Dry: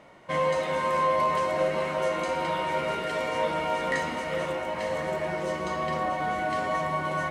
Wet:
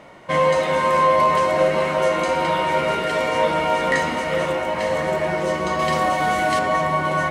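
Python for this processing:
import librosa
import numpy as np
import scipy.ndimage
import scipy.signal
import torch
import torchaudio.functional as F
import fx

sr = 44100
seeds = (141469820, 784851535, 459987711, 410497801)

y = fx.high_shelf(x, sr, hz=3700.0, db=10.5, at=(5.79, 6.59))
y = y * 10.0 ** (8.0 / 20.0)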